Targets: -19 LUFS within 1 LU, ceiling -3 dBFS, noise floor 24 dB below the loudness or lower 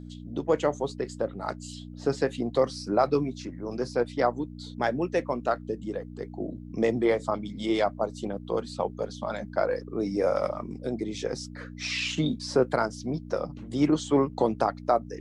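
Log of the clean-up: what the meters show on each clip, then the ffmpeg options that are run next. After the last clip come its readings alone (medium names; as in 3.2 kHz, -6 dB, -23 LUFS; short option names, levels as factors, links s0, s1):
hum 60 Hz; highest harmonic 300 Hz; hum level -39 dBFS; loudness -29.0 LUFS; peak level -9.5 dBFS; loudness target -19.0 LUFS
-> -af "bandreject=f=60:t=h:w=4,bandreject=f=120:t=h:w=4,bandreject=f=180:t=h:w=4,bandreject=f=240:t=h:w=4,bandreject=f=300:t=h:w=4"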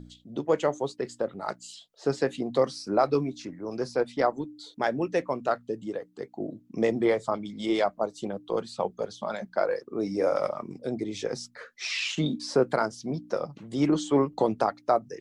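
hum not found; loudness -29.0 LUFS; peak level -9.5 dBFS; loudness target -19.0 LUFS
-> -af "volume=3.16,alimiter=limit=0.708:level=0:latency=1"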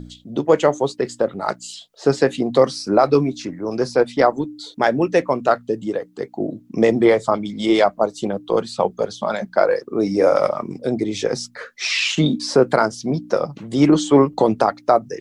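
loudness -19.5 LUFS; peak level -3.0 dBFS; noise floor -50 dBFS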